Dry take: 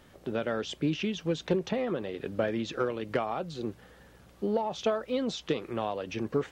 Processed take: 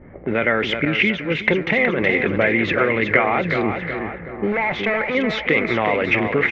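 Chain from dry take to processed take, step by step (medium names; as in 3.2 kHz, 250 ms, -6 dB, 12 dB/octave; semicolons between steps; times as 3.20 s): in parallel at 0 dB: compressor with a negative ratio -37 dBFS, ratio -1; 4.52–5.15 s: on the sum: hard clipper -28 dBFS, distortion -16 dB; resonant low-pass 2.1 kHz, resonance Q 12; on a send: feedback delay 371 ms, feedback 53%, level -7 dB; on the sum: level-controlled noise filter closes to 350 Hz, open at -23.5 dBFS; 0.85–1.98 s: expander -22 dBFS; trim +6.5 dB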